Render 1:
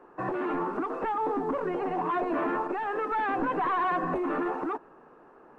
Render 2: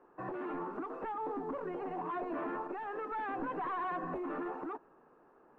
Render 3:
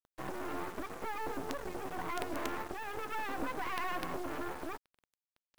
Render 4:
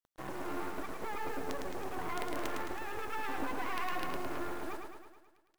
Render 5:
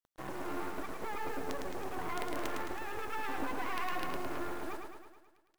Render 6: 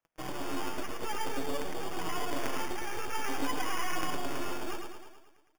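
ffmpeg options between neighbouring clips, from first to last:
-af "highshelf=f=3.5k:g=-7,volume=-9dB"
-af "acrusher=bits=6:dc=4:mix=0:aa=0.000001,aeval=exprs='sgn(val(0))*max(abs(val(0))-0.00251,0)':c=same,volume=5dB"
-af "aecho=1:1:108|216|324|432|540|648|756|864:0.596|0.345|0.2|0.116|0.0674|0.0391|0.0227|0.0132,volume=-1.5dB"
-af anull
-af "flanger=delay=5.9:depth=2.7:regen=47:speed=0.52:shape=triangular,acrusher=samples=11:mix=1:aa=0.000001,volume=7dB"

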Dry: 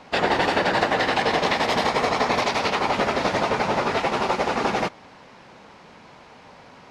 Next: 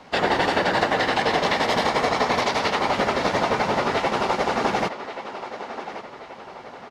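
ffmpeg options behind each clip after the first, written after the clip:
-filter_complex "[0:a]bandreject=f=2.5k:w=19,acrossover=split=210[a][b];[a]acrusher=bits=6:mode=log:mix=0:aa=0.000001[c];[b]asplit=2[d][e];[e]adelay=1131,lowpass=f=4.5k:p=1,volume=-11dB,asplit=2[f][g];[g]adelay=1131,lowpass=f=4.5k:p=1,volume=0.46,asplit=2[h][i];[i]adelay=1131,lowpass=f=4.5k:p=1,volume=0.46,asplit=2[j][k];[k]adelay=1131,lowpass=f=4.5k:p=1,volume=0.46,asplit=2[l][m];[m]adelay=1131,lowpass=f=4.5k:p=1,volume=0.46[n];[d][f][h][j][l][n]amix=inputs=6:normalize=0[o];[c][o]amix=inputs=2:normalize=0"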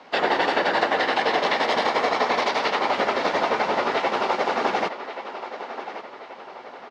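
-filter_complex "[0:a]acrossover=split=240 5800:gain=0.141 1 0.2[a][b][c];[a][b][c]amix=inputs=3:normalize=0"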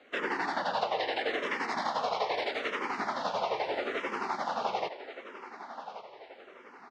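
-filter_complex "[0:a]asplit=2[a][b];[b]afreqshift=-0.78[c];[a][c]amix=inputs=2:normalize=1,volume=-7dB"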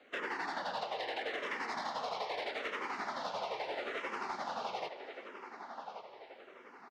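-filter_complex "[0:a]acrossover=split=450|2200[a][b][c];[a]acompressor=threshold=-46dB:ratio=4[d];[b]acompressor=threshold=-33dB:ratio=4[e];[c]acompressor=threshold=-40dB:ratio=4[f];[d][e][f]amix=inputs=3:normalize=0,asplit=2[g][h];[h]volume=32dB,asoftclip=hard,volume=-32dB,volume=-7dB[i];[g][i]amix=inputs=2:normalize=0,aecho=1:1:398:0.0891,volume=-6.5dB"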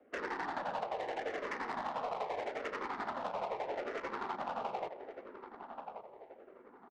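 -af "adynamicsmooth=sensitivity=4:basefreq=780,volume=2dB"

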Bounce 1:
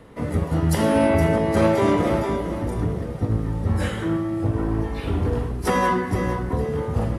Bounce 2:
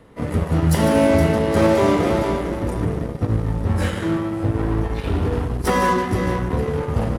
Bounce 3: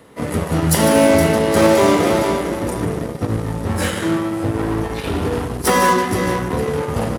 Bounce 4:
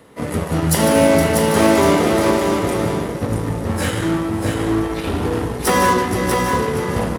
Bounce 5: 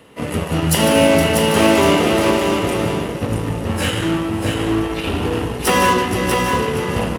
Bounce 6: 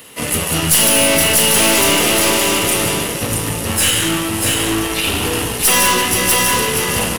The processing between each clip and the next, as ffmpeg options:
-filter_complex "[0:a]aecho=1:1:148:0.335,asplit=2[a][b];[b]acrusher=bits=3:mix=0:aa=0.5,volume=-5dB[c];[a][c]amix=inputs=2:normalize=0,volume=-2dB"
-af "highpass=f=180:p=1,highshelf=f=5k:g=9,volume=4dB"
-af "aecho=1:1:641:0.562,volume=-1dB"
-af "equalizer=f=2.8k:w=4.2:g=10.5"
-af "crystalizer=i=8:c=0,aeval=exprs='(tanh(2.82*val(0)+0.2)-tanh(0.2))/2.82':c=same"

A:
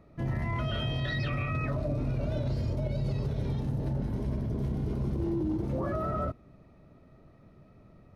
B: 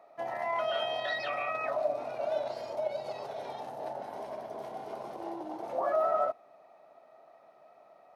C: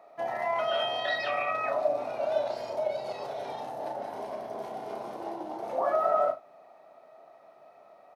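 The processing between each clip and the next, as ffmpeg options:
-af "highpass=f=720:t=q:w=4.9"
-af "aecho=1:1:34|75:0.422|0.158,volume=2.5dB"

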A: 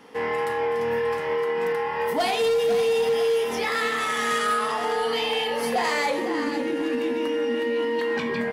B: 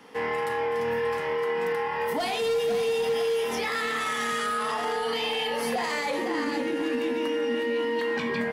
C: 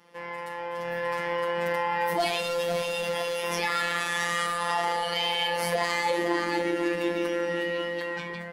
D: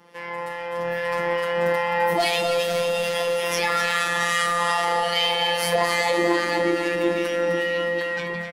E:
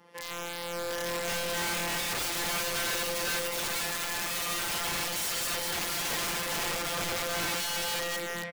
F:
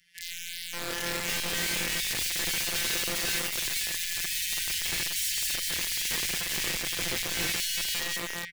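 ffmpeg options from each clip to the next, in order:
-filter_complex "[0:a]lowshelf=f=310:g=-9,acrossover=split=240[a][b];[a]acontrast=72[c];[b]alimiter=limit=-21dB:level=0:latency=1:release=19[d];[c][d]amix=inputs=2:normalize=0"
-af "afftfilt=real='hypot(re,im)*cos(PI*b)':imag='0':win_size=1024:overlap=0.75,dynaudnorm=f=280:g=7:m=10dB,volume=-4.5dB"
-filter_complex "[0:a]acrossover=split=1500[a][b];[a]aeval=exprs='val(0)*(1-0.5/2+0.5/2*cos(2*PI*2.4*n/s))':c=same[c];[b]aeval=exprs='val(0)*(1-0.5/2-0.5/2*cos(2*PI*2.4*n/s))':c=same[d];[c][d]amix=inputs=2:normalize=0,asplit=2[e][f];[f]aecho=0:1:257:0.398[g];[e][g]amix=inputs=2:normalize=0,volume=7dB"
-af "aeval=exprs='(mod(12.6*val(0)+1,2)-1)/12.6':c=same,volume=-5dB"
-filter_complex "[0:a]asuperstop=centerf=890:order=12:qfactor=0.83,acrossover=split=110|1700|5700[a][b][c][d];[b]acrusher=bits=5:mix=0:aa=0.000001[e];[a][e][c][d]amix=inputs=4:normalize=0,volume=3dB"

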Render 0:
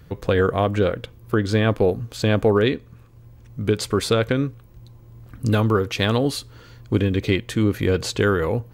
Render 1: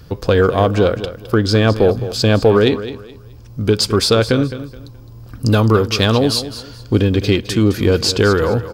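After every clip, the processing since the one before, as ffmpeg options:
-filter_complex "[0:a]equalizer=f=160:t=o:w=0.33:g=-4,equalizer=f=2k:t=o:w=0.33:g=-7,equalizer=f=5k:t=o:w=0.33:g=11,asplit=2[a][b];[b]asoftclip=type=tanh:threshold=-20.5dB,volume=-9dB[c];[a][c]amix=inputs=2:normalize=0,aecho=1:1:212|424|636:0.224|0.0604|0.0163,volume=4.5dB"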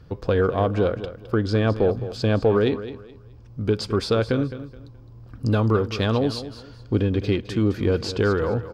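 -af "aemphasis=mode=reproduction:type=75kf,volume=-7dB"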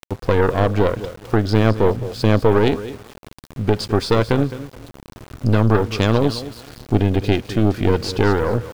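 -af "aeval=exprs='val(0)*gte(abs(val(0)),0.0106)':c=same,aeval=exprs='0.376*(cos(1*acos(clip(val(0)/0.376,-1,1)))-cos(1*PI/2))+0.15*(cos(2*acos(clip(val(0)/0.376,-1,1)))-cos(2*PI/2))+0.0188*(cos(6*acos(clip(val(0)/0.376,-1,1)))-cos(6*PI/2))':c=same,acompressor=mode=upward:threshold=-33dB:ratio=2.5,volume=3.5dB"

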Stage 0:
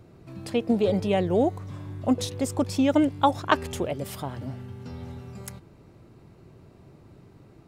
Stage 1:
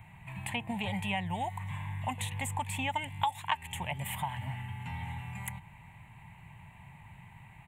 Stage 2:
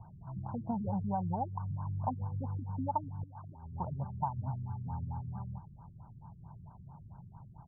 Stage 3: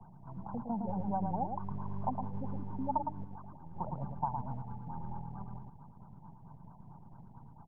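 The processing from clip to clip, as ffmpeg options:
-filter_complex "[0:a]firequalizer=gain_entry='entry(170,0);entry(300,-22);entry(480,-21);entry(890,13);entry(1300,-7);entry(1900,15);entry(2900,10);entry(5100,-22);entry(7500,4)':delay=0.05:min_phase=1,acrossover=split=1200|2600[a][b][c];[a]acompressor=threshold=-33dB:ratio=4[d];[b]acompressor=threshold=-47dB:ratio=4[e];[c]acompressor=threshold=-39dB:ratio=4[f];[d][e][f]amix=inputs=3:normalize=0"
-af "afftfilt=real='re*lt(b*sr/1024,360*pow(1600/360,0.5+0.5*sin(2*PI*4.5*pts/sr)))':imag='im*lt(b*sr/1024,360*pow(1600/360,0.5+0.5*sin(2*PI*4.5*pts/sr)))':win_size=1024:overlap=0.75,volume=1.5dB"
-filter_complex "[0:a]aecho=1:1:111:0.531,acrossover=split=120|280|530[a][b][c][d];[a]aeval=exprs='abs(val(0))':c=same[e];[e][b][c][d]amix=inputs=4:normalize=0"

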